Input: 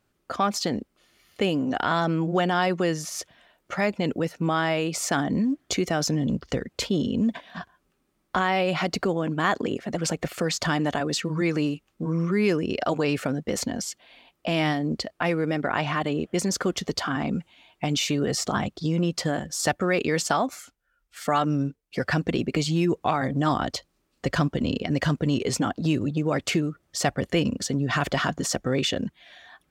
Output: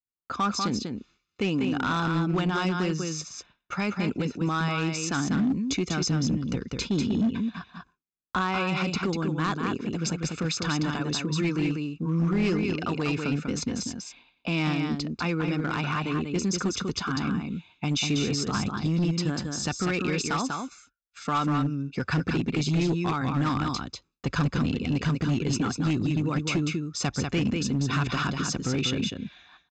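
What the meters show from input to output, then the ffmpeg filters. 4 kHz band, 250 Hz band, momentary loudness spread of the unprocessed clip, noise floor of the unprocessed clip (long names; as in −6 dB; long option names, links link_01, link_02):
−1.5 dB, −0.5 dB, 7 LU, −72 dBFS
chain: -filter_complex "[0:a]aecho=1:1:0.8:0.65,asplit=2[link_01][link_02];[link_02]aecho=0:1:194:0.562[link_03];[link_01][link_03]amix=inputs=2:normalize=0,agate=range=-33dB:threshold=-45dB:ratio=3:detection=peak,aresample=16000,volume=16.5dB,asoftclip=hard,volume=-16.5dB,aresample=44100,aeval=exprs='0.237*(cos(1*acos(clip(val(0)/0.237,-1,1)))-cos(1*PI/2))+0.00188*(cos(3*acos(clip(val(0)/0.237,-1,1)))-cos(3*PI/2))':channel_layout=same,adynamicequalizer=threshold=0.0126:dfrequency=870:dqfactor=0.77:tfrequency=870:tqfactor=0.77:attack=5:release=100:ratio=0.375:range=1.5:mode=cutabove:tftype=bell,volume=-3dB"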